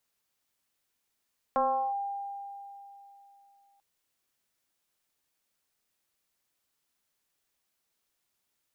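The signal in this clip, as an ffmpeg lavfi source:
-f lavfi -i "aevalsrc='0.0794*pow(10,-3*t/3.18)*sin(2*PI*799*t+1.4*clip(1-t/0.38,0,1)*sin(2*PI*0.34*799*t))':d=2.24:s=44100"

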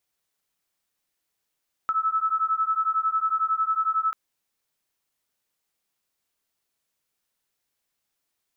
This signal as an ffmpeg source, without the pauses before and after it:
-f lavfi -i "aevalsrc='0.0596*(sin(2*PI*1300*t)+sin(2*PI*1311*t))':d=2.24:s=44100"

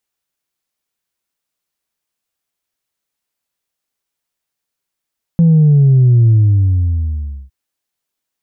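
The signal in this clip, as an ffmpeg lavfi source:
-f lavfi -i "aevalsrc='0.501*clip((2.11-t)/1.21,0,1)*tanh(1.06*sin(2*PI*170*2.11/log(65/170)*(exp(log(65/170)*t/2.11)-1)))/tanh(1.06)':d=2.11:s=44100"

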